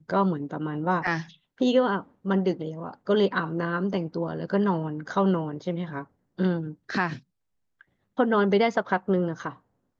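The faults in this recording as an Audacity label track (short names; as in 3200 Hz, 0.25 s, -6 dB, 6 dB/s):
1.070000	1.070000	gap 3.8 ms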